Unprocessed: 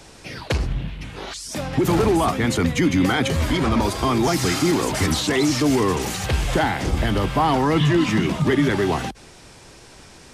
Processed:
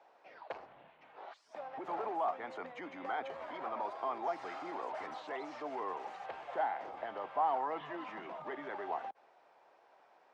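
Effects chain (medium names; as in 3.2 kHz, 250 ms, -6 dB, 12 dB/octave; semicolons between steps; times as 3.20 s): ladder band-pass 850 Hz, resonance 45%; trim -4 dB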